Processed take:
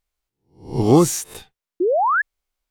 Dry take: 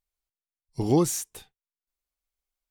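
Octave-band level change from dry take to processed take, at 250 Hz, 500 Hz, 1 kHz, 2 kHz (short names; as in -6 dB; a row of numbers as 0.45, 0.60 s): +8.0, +11.0, +16.5, +28.5 dB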